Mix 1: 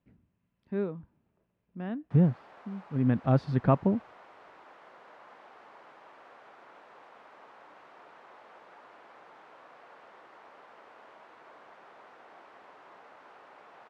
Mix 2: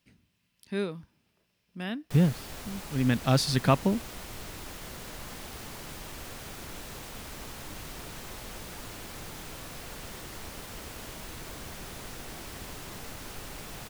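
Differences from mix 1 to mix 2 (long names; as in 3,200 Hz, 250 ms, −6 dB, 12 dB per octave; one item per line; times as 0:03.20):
background: remove high-pass filter 760 Hz 12 dB per octave
master: remove low-pass filter 1,100 Hz 12 dB per octave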